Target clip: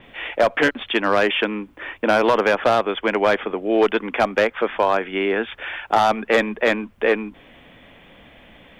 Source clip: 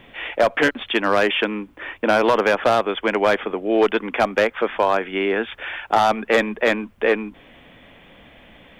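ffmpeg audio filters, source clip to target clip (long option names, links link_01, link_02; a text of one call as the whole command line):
ffmpeg -i in.wav -af "adynamicequalizer=threshold=0.01:dfrequency=6200:dqfactor=0.7:tfrequency=6200:tqfactor=0.7:attack=5:release=100:ratio=0.375:range=2.5:mode=cutabove:tftype=highshelf" out.wav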